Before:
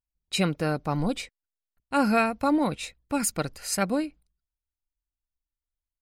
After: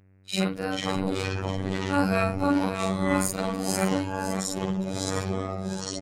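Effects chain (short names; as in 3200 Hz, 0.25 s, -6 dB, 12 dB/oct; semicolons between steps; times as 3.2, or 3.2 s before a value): short-time reversal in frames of 0.107 s; buzz 100 Hz, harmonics 28, -61 dBFS -7 dB/oct; on a send: echo 0.56 s -10 dB; on the sum: echoes that change speed 0.356 s, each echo -4 st, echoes 3; robotiser 95.2 Hz; gain +3.5 dB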